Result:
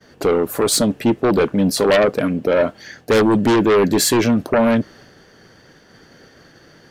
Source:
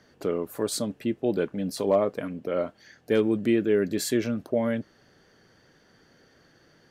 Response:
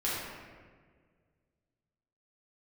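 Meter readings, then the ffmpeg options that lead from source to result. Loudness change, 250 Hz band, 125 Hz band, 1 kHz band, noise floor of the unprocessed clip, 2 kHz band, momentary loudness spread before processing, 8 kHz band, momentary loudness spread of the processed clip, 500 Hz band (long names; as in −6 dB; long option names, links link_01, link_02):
+10.5 dB, +10.0 dB, +11.5 dB, +15.0 dB, −61 dBFS, +13.5 dB, 7 LU, +14.0 dB, 5 LU, +9.5 dB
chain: -af "agate=range=-33dB:threshold=-55dB:ratio=3:detection=peak,aeval=exprs='0.237*(cos(1*acos(clip(val(0)/0.237,-1,1)))-cos(1*PI/2))+0.119*(cos(5*acos(clip(val(0)/0.237,-1,1)))-cos(5*PI/2))':channel_layout=same,volume=4dB"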